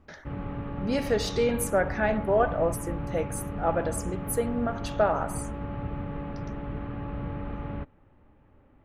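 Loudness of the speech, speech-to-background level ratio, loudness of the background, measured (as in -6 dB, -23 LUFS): -28.5 LUFS, 7.5 dB, -36.0 LUFS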